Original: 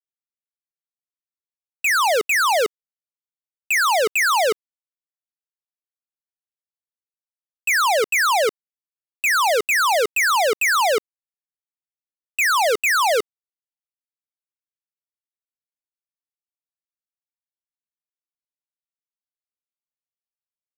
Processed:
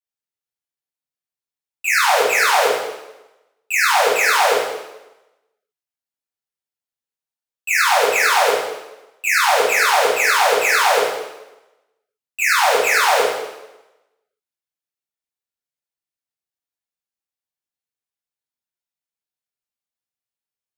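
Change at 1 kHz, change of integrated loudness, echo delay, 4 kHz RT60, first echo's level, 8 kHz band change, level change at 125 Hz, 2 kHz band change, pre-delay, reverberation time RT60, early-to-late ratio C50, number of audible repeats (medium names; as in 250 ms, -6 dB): +3.0 dB, +2.5 dB, no echo, 0.95 s, no echo, +2.5 dB, no reading, +3.0 dB, 4 ms, 1.0 s, 1.0 dB, no echo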